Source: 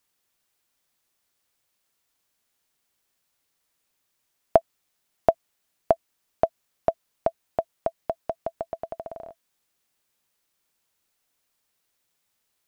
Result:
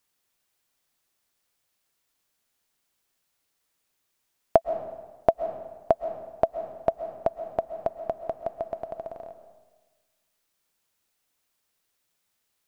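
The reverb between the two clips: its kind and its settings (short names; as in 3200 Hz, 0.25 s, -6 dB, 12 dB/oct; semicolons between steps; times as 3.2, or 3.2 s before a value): digital reverb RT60 1.3 s, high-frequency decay 0.75×, pre-delay 90 ms, DRR 10 dB; gain -1 dB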